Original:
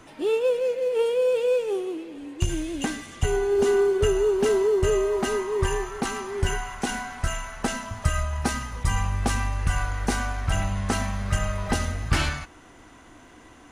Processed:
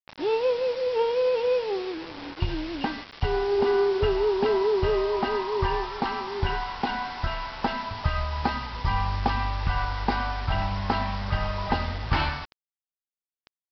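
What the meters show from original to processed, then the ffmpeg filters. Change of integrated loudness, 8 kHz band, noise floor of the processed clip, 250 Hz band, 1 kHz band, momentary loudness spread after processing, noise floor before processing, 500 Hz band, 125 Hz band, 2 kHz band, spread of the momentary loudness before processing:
−1.5 dB, below −20 dB, below −85 dBFS, −2.5 dB, +4.0 dB, 8 LU, −50 dBFS, −2.0 dB, −2.5 dB, −1.0 dB, 9 LU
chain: -af "equalizer=frequency=900:width=3.1:gain=11.5,aresample=11025,acrusher=bits=5:mix=0:aa=0.000001,aresample=44100,volume=-2.5dB"

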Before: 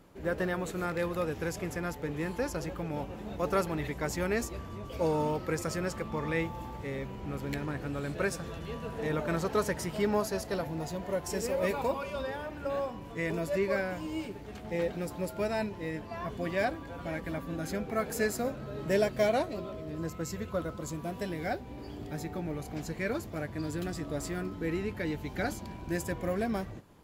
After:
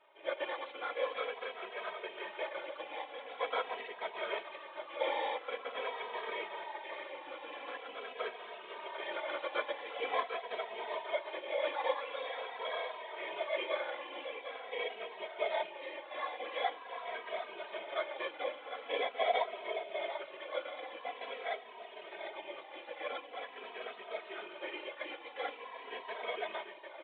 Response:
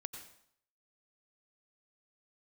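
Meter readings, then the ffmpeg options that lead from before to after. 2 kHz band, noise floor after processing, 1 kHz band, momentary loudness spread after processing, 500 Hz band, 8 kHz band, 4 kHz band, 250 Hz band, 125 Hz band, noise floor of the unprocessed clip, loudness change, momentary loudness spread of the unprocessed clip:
−2.5 dB, −51 dBFS, −1.0 dB, 9 LU, −6.0 dB, below −35 dB, +2.5 dB, −21.5 dB, below −40 dB, −44 dBFS, −5.5 dB, 8 LU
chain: -filter_complex "[0:a]acrossover=split=1400[link_01][link_02];[link_01]acrusher=samples=16:mix=1:aa=0.000001[link_03];[link_02]alimiter=level_in=10.5dB:limit=-24dB:level=0:latency=1,volume=-10.5dB[link_04];[link_03][link_04]amix=inputs=2:normalize=0,equalizer=frequency=1000:width_type=o:width=0.28:gain=6,aecho=1:1:748|1496|2244|2992|3740:0.398|0.175|0.0771|0.0339|0.0149,aresample=8000,aresample=44100,afftfilt=real='hypot(re,im)*cos(2*PI*random(0))':imag='hypot(re,im)*sin(2*PI*random(1))':win_size=512:overlap=0.75,highpass=frequency=530:width=0.5412,highpass=frequency=530:width=1.3066,asplit=2[link_05][link_06];[link_06]adelay=2.8,afreqshift=-0.45[link_07];[link_05][link_07]amix=inputs=2:normalize=1,volume=6.5dB"

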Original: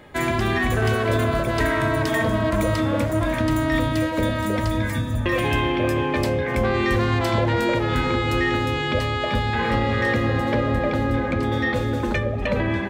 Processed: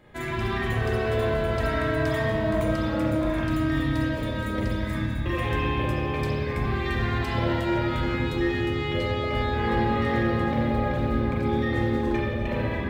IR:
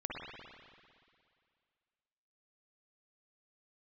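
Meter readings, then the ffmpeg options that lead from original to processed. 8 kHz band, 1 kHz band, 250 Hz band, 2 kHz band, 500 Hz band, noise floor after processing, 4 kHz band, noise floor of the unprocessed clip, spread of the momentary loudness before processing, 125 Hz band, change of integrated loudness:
below −10 dB, −4.5 dB, −3.0 dB, −5.5 dB, −4.0 dB, −29 dBFS, −6.0 dB, −25 dBFS, 3 LU, −3.5 dB, −4.0 dB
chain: -filter_complex "[0:a]acrusher=bits=9:mode=log:mix=0:aa=0.000001,lowshelf=frequency=180:gain=5.5[link_01];[1:a]atrim=start_sample=2205,asetrate=61740,aresample=44100[link_02];[link_01][link_02]afir=irnorm=-1:irlink=0,volume=-5dB"

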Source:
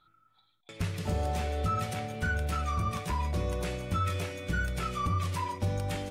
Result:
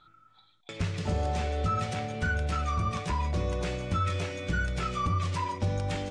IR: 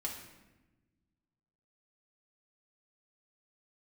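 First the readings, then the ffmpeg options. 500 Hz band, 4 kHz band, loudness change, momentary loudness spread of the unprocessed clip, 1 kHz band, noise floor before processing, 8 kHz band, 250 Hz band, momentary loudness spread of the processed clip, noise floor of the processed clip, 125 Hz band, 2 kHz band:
+2.0 dB, +2.0 dB, +1.5 dB, 4 LU, +1.5 dB, −69 dBFS, −0.5 dB, +2.0 dB, 3 LU, −62 dBFS, +1.5 dB, +1.5 dB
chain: -filter_complex "[0:a]lowpass=frequency=7800:width=0.5412,lowpass=frequency=7800:width=1.3066,asplit=2[link_01][link_02];[link_02]acompressor=threshold=-45dB:ratio=6,volume=1.5dB[link_03];[link_01][link_03]amix=inputs=2:normalize=0"

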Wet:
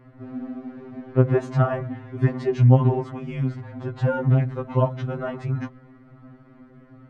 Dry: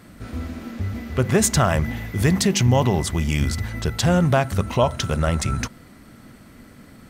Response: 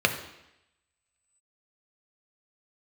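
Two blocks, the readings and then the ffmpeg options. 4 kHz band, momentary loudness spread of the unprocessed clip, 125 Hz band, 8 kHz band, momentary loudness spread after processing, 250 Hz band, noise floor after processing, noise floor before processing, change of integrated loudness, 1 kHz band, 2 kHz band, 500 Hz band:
below −20 dB, 13 LU, +0.5 dB, below −30 dB, 17 LU, −4.0 dB, −51 dBFS, −47 dBFS, −2.0 dB, −5.5 dB, −9.0 dB, −2.0 dB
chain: -af "lowpass=1300,afftfilt=real='re*2.45*eq(mod(b,6),0)':imag='im*2.45*eq(mod(b,6),0)':win_size=2048:overlap=0.75"

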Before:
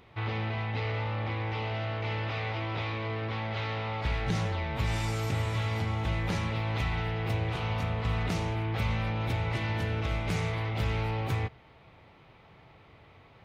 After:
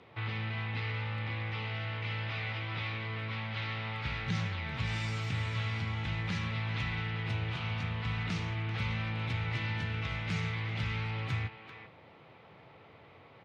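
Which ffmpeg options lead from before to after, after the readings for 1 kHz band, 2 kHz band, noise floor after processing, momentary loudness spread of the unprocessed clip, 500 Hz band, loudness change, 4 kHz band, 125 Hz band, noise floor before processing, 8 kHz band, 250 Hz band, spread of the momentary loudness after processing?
−6.5 dB, −0.5 dB, −57 dBFS, 3 LU, −10.5 dB, −3.5 dB, −1.0 dB, −3.5 dB, −57 dBFS, can't be measured, −4.5 dB, 3 LU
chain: -filter_complex "[0:a]equalizer=frequency=500:width_type=o:width=0.39:gain=3.5,acrossover=split=230|1200[link_01][link_02][link_03];[link_02]acompressor=threshold=-53dB:ratio=6[link_04];[link_01][link_04][link_03]amix=inputs=3:normalize=0,highpass=110,lowpass=4800,asplit=2[link_05][link_06];[link_06]adelay=390,highpass=300,lowpass=3400,asoftclip=type=hard:threshold=-30dB,volume=-8dB[link_07];[link_05][link_07]amix=inputs=2:normalize=0"

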